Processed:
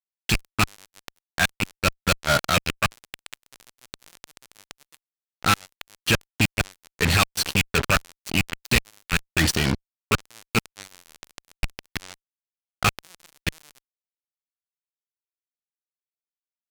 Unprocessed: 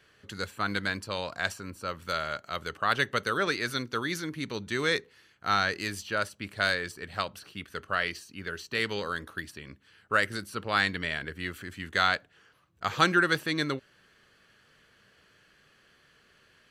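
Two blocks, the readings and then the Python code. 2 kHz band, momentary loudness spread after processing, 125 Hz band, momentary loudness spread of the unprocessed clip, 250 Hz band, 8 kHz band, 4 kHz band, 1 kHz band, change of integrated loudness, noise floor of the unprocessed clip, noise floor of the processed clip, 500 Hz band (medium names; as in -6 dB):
+2.5 dB, 14 LU, +11.0 dB, 12 LU, +5.0 dB, +13.5 dB, +6.0 dB, +1.5 dB, +6.0 dB, -63 dBFS, under -85 dBFS, +1.0 dB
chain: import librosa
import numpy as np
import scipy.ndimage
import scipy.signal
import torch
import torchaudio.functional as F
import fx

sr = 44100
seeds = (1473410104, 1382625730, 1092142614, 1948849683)

p1 = fx.rattle_buzz(x, sr, strikes_db=-39.0, level_db=-14.0)
p2 = fx.transient(p1, sr, attack_db=-8, sustain_db=0)
p3 = fx.schmitt(p2, sr, flips_db=-19.5)
p4 = p2 + (p3 * librosa.db_to_amplitude(-4.5))
p5 = fx.low_shelf(p4, sr, hz=370.0, db=11.5)
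p6 = fx.gate_flip(p5, sr, shuts_db=-14.0, range_db=-33)
p7 = fx.peak_eq(p6, sr, hz=5000.0, db=9.5, octaves=2.7)
p8 = fx.fuzz(p7, sr, gain_db=41.0, gate_db=-40.0)
y = p8 * librosa.db_to_amplitude(-1.5)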